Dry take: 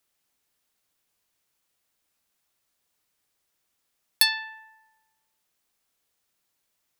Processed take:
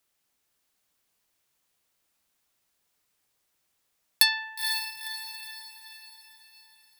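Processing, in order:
feedback delay with all-pass diffusion 491 ms, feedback 47%, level −6 dB

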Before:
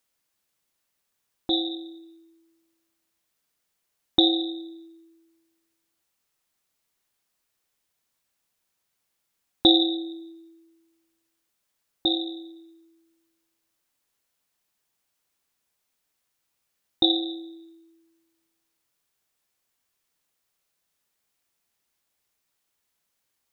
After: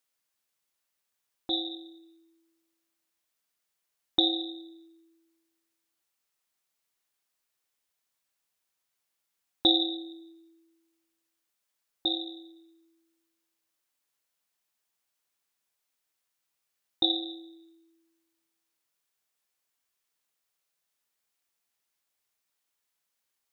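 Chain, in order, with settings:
low-shelf EQ 380 Hz −7 dB
level −4 dB

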